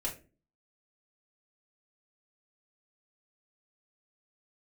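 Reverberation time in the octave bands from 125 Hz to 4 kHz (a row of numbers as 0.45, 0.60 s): 0.55, 0.55, 0.40, 0.25, 0.30, 0.20 s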